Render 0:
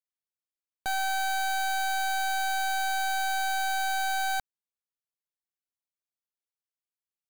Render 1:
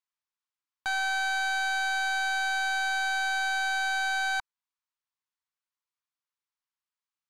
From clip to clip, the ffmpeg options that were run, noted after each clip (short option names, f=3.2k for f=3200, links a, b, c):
-af "lowpass=6.4k,lowshelf=f=770:t=q:w=3:g=-8.5,volume=1.5dB"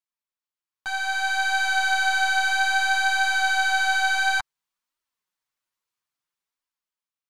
-af "dynaudnorm=f=260:g=9:m=9.5dB,flanger=delay=2.9:depth=7.2:regen=-2:speed=0.6:shape=triangular"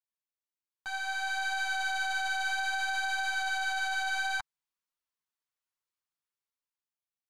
-af "alimiter=limit=-15.5dB:level=0:latency=1:release=22,volume=-8dB"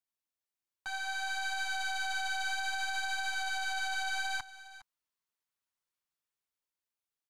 -filter_complex "[0:a]acrossover=split=350|3000[a][b][c];[b]acompressor=threshold=-41dB:ratio=1.5[d];[a][d][c]amix=inputs=3:normalize=0,aecho=1:1:410:0.15"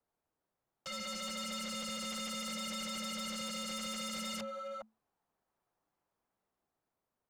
-filter_complex "[0:a]acrossover=split=230|1400|2900[a][b][c][d];[b]aeval=exprs='0.0224*sin(PI/2*7.08*val(0)/0.0224)':c=same[e];[a][e][c][d]amix=inputs=4:normalize=0,afreqshift=-220,asoftclip=type=tanh:threshold=-30.5dB,volume=-4.5dB"